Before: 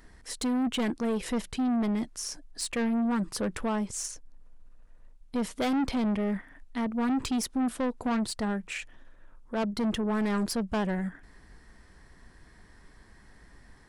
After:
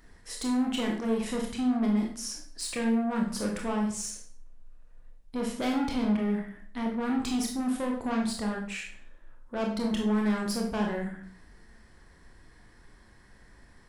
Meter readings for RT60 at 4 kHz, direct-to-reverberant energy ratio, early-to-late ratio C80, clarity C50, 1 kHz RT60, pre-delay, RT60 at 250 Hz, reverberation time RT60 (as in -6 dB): 0.45 s, 0.0 dB, 9.0 dB, 5.0 dB, 0.50 s, 21 ms, 0.55 s, 0.50 s